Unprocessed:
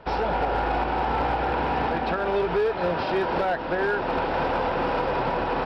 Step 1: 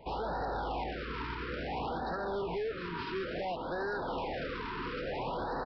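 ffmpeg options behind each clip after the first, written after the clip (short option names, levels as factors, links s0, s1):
-af "aresample=11025,asoftclip=type=tanh:threshold=0.0447,aresample=44100,afftfilt=real='re*(1-between(b*sr/1024,620*pow(2700/620,0.5+0.5*sin(2*PI*0.58*pts/sr))/1.41,620*pow(2700/620,0.5+0.5*sin(2*PI*0.58*pts/sr))*1.41))':imag='im*(1-between(b*sr/1024,620*pow(2700/620,0.5+0.5*sin(2*PI*0.58*pts/sr))/1.41,620*pow(2700/620,0.5+0.5*sin(2*PI*0.58*pts/sr))*1.41))':win_size=1024:overlap=0.75,volume=0.562"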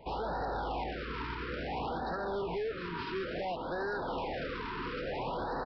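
-af anull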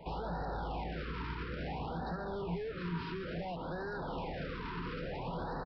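-filter_complex "[0:a]equalizer=f=170:t=o:w=0.23:g=10.5,acrossover=split=170[s0][s1];[s1]alimiter=level_in=3.55:limit=0.0631:level=0:latency=1:release=278,volume=0.282[s2];[s0][s2]amix=inputs=2:normalize=0,asplit=2[s3][s4];[s4]adelay=157.4,volume=0.0447,highshelf=f=4000:g=-3.54[s5];[s3][s5]amix=inputs=2:normalize=0,volume=1.19"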